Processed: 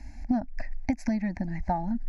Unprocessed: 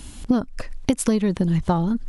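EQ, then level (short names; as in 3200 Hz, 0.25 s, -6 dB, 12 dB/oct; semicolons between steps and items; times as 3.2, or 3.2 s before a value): air absorption 110 m; fixed phaser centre 720 Hz, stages 8; fixed phaser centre 2000 Hz, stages 8; 0.0 dB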